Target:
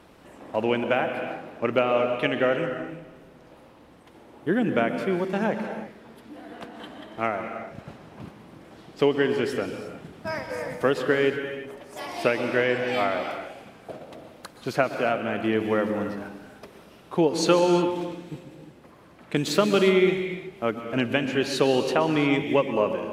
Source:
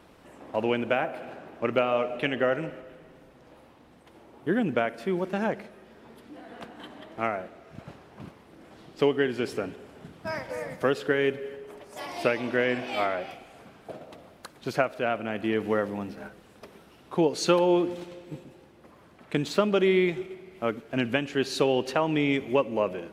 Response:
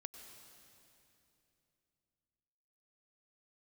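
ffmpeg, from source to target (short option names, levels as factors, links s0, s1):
-filter_complex "[0:a]asettb=1/sr,asplit=3[s0][s1][s2];[s0]atrim=end=19.364[s3];[s1]atrim=start=19.36:end=19.89,asetpts=PTS-STARTPTS,afade=t=in:d=0.004:c=qsin,afade=t=out:st=0.526:d=0.004:c=qsin,highshelf=f=3900:g=8[s4];[s2]atrim=start=19.886[s5];[s3][s4]acrossfade=d=0.004:c1=hsin:c2=qsin[s6];[s6][s5]acrossfade=d=0.004:c1=qsin:c2=hsin[s7];[1:a]atrim=start_sample=2205,afade=t=out:st=0.33:d=0.01,atrim=end_sample=14994,asetrate=33516,aresample=44100[s8];[s7][s8]afir=irnorm=-1:irlink=0,volume=2.11"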